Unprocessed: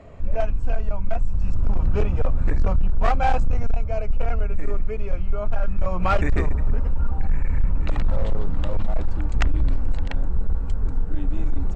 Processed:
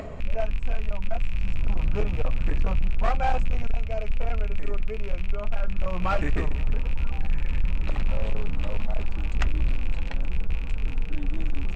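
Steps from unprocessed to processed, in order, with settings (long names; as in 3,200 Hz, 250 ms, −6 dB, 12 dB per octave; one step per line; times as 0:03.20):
loose part that buzzes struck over −28 dBFS, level −24 dBFS
flanger 0.23 Hz, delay 4.6 ms, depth 1.9 ms, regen −65%
upward compression, threshold −25 dBFS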